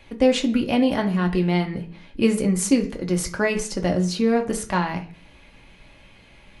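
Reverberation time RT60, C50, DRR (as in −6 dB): 0.45 s, 13.5 dB, 2.0 dB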